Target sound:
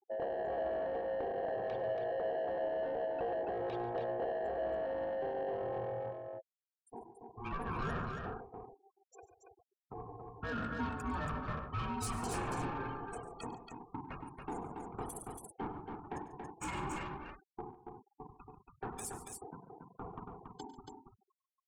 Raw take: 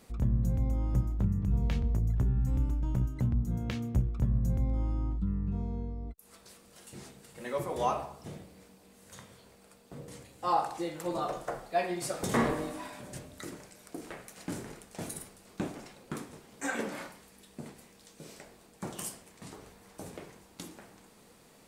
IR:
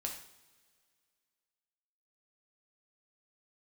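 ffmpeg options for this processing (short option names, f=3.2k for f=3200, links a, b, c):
-filter_complex "[0:a]aeval=exprs='val(0)*sin(2*PI*590*n/s)':c=same,afftfilt=real='re*gte(hypot(re,im),0.00708)':imag='im*gte(hypot(re,im),0.00708)':win_size=1024:overlap=0.75,alimiter=level_in=4.5dB:limit=-24dB:level=0:latency=1:release=53,volume=-4.5dB,asoftclip=type=tanh:threshold=-35dB,equalizer=f=90:w=0.39:g=4,bandreject=f=2k:w=8.8,asplit=2[a][b];[b]aecho=0:1:100|141|280:0.15|0.168|0.596[c];[a][c]amix=inputs=2:normalize=0,volume=2dB"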